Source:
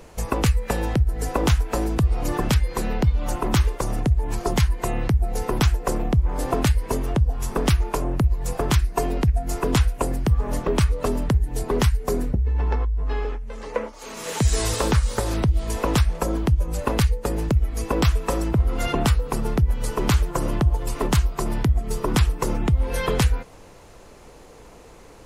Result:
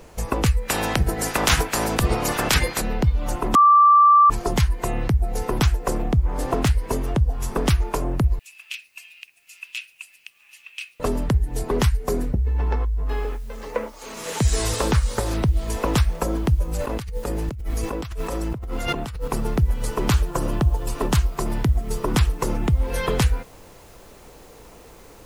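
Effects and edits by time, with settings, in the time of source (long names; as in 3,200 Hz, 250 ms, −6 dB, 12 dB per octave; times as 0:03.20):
0:00.68–0:02.80: ceiling on every frequency bin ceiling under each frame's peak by 22 dB
0:03.55–0:04.30: beep over 1,170 Hz −9.5 dBFS
0:06.03–0:06.88: highs frequency-modulated by the lows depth 0.3 ms
0:08.39–0:11.00: four-pole ladder high-pass 2,500 Hz, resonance 85%
0:13.09: noise floor change −68 dB −56 dB
0:16.72–0:19.28: compressor whose output falls as the input rises −27 dBFS
0:20.12–0:21.16: notch filter 2,100 Hz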